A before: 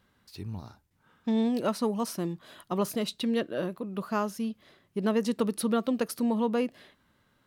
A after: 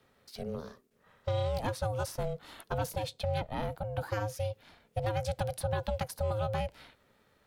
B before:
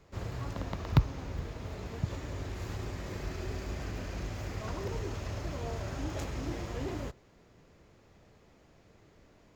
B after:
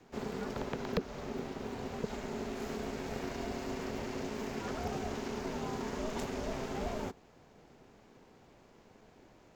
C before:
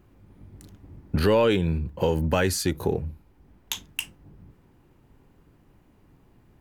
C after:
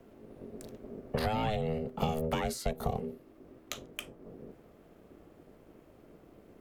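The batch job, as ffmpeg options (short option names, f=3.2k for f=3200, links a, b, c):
-filter_complex "[0:a]acrossover=split=160|430|1300[a][b][c][d];[a]acompressor=threshold=-39dB:ratio=4[e];[b]acompressor=threshold=-35dB:ratio=4[f];[c]acompressor=threshold=-42dB:ratio=4[g];[d]acompressor=threshold=-42dB:ratio=4[h];[e][f][g][h]amix=inputs=4:normalize=0,aeval=exprs='val(0)*sin(2*PI*320*n/s)':c=same,volume=3.5dB"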